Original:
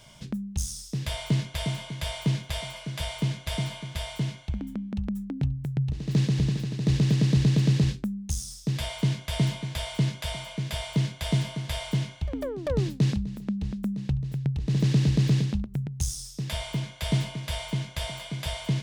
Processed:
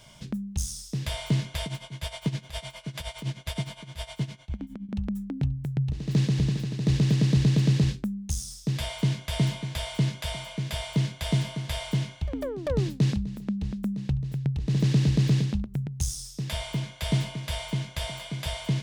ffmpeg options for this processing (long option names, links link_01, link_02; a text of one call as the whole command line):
ffmpeg -i in.wav -filter_complex "[0:a]asettb=1/sr,asplit=3[link_01][link_02][link_03];[link_01]atrim=end=1.644[link_04];[link_02]atrim=start=1.64:end=4.89,asetpts=PTS-STARTPTS,afade=type=in:duration=0.004:curve=qsin,afade=type=out:start_time=3.246:duration=0.004:curve=qsin,tremolo=f=9.7:d=0.82[link_05];[link_03]atrim=start=4.886[link_06];[link_04][link_05]acrossfade=duration=0.004:curve1=hsin:curve2=qsin[link_07];[link_07][link_06]acrossfade=duration=0.004:curve1=qsin:curve2=hsin" out.wav